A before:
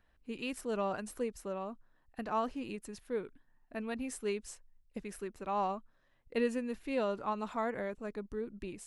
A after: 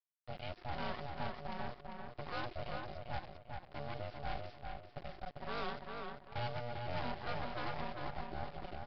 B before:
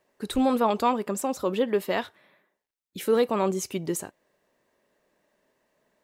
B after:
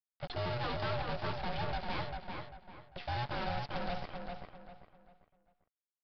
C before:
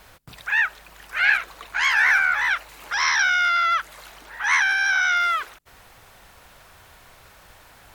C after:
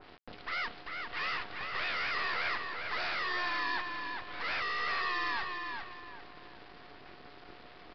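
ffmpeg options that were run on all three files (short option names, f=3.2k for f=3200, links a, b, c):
-filter_complex "[0:a]highshelf=f=3.1k:g=-8.5,bandreject=f=640:w=12,asoftclip=type=tanh:threshold=-21dB,aeval=exprs='val(0)*sin(2*PI*360*n/s)':c=same,acrusher=bits=6:dc=4:mix=0:aa=0.000001,asoftclip=type=hard:threshold=-36dB,asplit=2[a][b];[b]adelay=396,lowpass=f=3.7k:p=1,volume=-4dB,asplit=2[c][d];[d]adelay=396,lowpass=f=3.7k:p=1,volume=0.34,asplit=2[e][f];[f]adelay=396,lowpass=f=3.7k:p=1,volume=0.34,asplit=2[g][h];[h]adelay=396,lowpass=f=3.7k:p=1,volume=0.34[i];[a][c][e][g][i]amix=inputs=5:normalize=0,aresample=11025,aresample=44100,adynamicequalizer=threshold=0.00355:dfrequency=2400:dqfactor=0.7:tfrequency=2400:tqfactor=0.7:attack=5:release=100:ratio=0.375:range=1.5:mode=boostabove:tftype=highshelf,volume=3dB"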